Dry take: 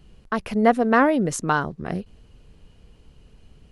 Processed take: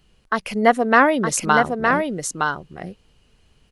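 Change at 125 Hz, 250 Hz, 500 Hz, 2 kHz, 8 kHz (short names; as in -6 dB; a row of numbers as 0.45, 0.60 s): -0.5, 0.0, +3.0, +7.5, +8.5 dB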